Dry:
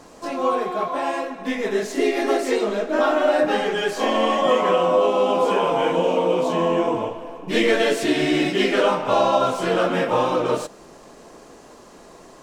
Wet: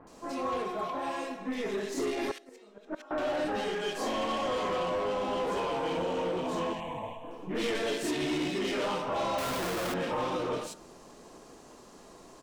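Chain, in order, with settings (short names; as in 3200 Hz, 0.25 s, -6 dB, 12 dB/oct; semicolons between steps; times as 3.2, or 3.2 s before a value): bell 580 Hz -3 dB 0.81 oct; de-hum 56.65 Hz, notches 37; 2.31–3.11 flipped gate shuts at -16 dBFS, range -26 dB; soft clip -22 dBFS, distortion -10 dB; short-mantissa float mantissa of 8-bit; 6.73–7.24 fixed phaser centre 1400 Hz, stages 6; bands offset in time lows, highs 70 ms, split 1900 Hz; 9.38–9.94 Schmitt trigger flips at -38.5 dBFS; gain -5 dB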